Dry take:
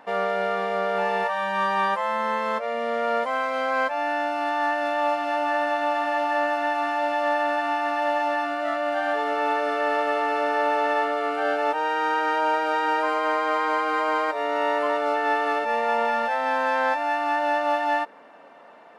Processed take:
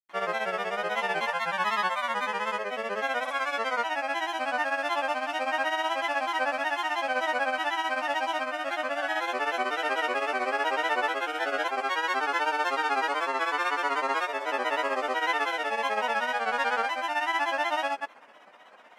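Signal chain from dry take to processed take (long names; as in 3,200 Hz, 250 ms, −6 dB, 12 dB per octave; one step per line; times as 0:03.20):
tilt shelving filter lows −7 dB, about 1,400 Hz
notch filter 4,200 Hz, Q 7.5
granular cloud, grains 16 per second, pitch spread up and down by 3 semitones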